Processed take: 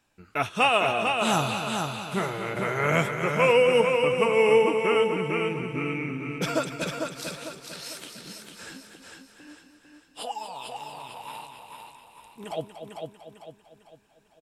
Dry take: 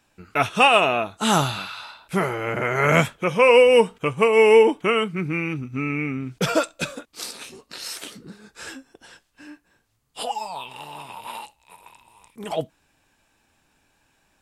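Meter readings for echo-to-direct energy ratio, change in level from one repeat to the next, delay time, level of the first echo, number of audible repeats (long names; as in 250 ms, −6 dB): −3.0 dB, repeats not evenly spaced, 238 ms, −10.0 dB, 8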